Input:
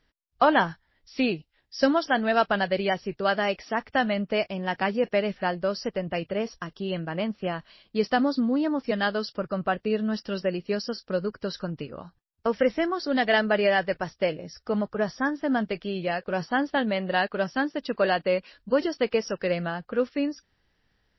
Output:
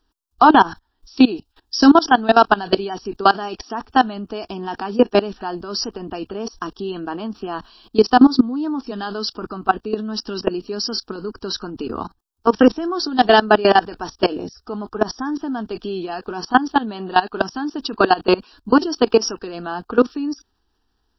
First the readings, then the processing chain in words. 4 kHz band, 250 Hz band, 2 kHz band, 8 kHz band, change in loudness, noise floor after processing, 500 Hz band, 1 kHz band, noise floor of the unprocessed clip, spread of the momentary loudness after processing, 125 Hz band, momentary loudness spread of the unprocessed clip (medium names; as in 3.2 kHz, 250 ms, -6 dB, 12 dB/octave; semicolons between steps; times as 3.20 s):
+8.5 dB, +9.0 dB, +4.0 dB, no reading, +8.0 dB, -69 dBFS, +5.5 dB, +10.5 dB, -72 dBFS, 16 LU, +1.0 dB, 9 LU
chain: level held to a coarse grid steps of 22 dB; static phaser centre 560 Hz, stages 6; loudness maximiser +23.5 dB; trim -1 dB